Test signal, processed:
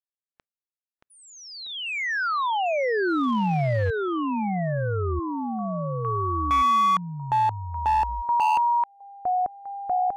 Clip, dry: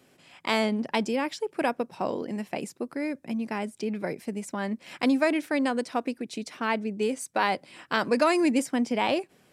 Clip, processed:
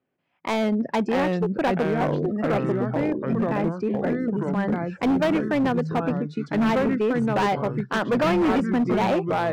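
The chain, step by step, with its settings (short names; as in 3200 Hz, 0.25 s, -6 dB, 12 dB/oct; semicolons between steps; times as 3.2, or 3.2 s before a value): LPF 2000 Hz 12 dB/oct; spectral noise reduction 22 dB; echoes that change speed 0.551 s, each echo -3 st, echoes 3; hard clip -22.5 dBFS; gain +5 dB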